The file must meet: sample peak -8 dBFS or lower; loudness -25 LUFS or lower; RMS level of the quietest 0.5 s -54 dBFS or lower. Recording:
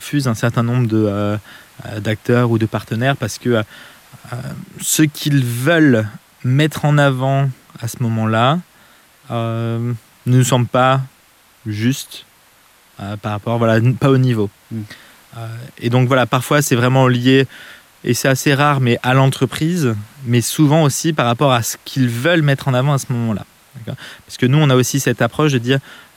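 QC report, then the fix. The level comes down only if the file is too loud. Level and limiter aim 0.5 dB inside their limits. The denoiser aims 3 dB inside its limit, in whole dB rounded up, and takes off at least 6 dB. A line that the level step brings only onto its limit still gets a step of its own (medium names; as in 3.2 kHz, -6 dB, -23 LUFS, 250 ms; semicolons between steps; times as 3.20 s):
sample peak -2.5 dBFS: fail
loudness -16.0 LUFS: fail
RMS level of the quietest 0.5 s -51 dBFS: fail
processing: trim -9.5 dB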